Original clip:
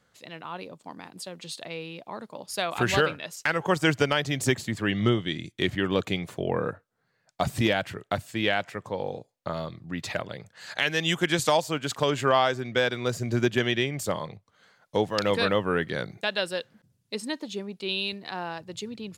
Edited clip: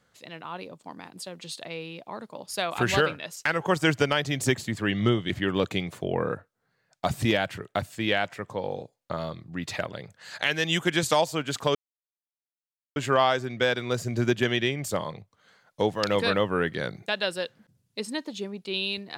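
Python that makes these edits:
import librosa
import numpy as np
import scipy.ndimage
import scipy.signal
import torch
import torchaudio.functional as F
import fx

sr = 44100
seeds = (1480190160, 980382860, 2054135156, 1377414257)

y = fx.edit(x, sr, fx.cut(start_s=5.3, length_s=0.36),
    fx.insert_silence(at_s=12.11, length_s=1.21), tone=tone)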